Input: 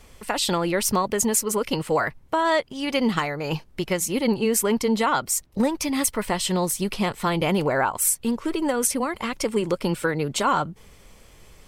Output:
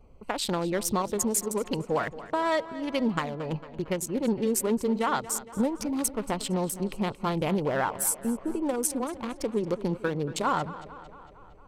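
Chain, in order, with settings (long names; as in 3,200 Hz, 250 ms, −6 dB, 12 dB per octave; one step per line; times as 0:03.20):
adaptive Wiener filter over 25 samples
tape delay 228 ms, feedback 65%, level −14.5 dB, low-pass 5,300 Hz
level −4 dB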